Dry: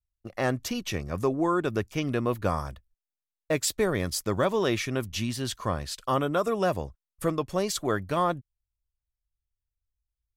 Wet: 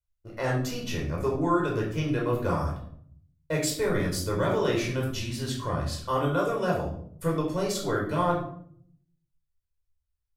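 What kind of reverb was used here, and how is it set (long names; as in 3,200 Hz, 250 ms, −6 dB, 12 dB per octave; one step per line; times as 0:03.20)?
rectangular room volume 880 cubic metres, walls furnished, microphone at 4.9 metres
level −7 dB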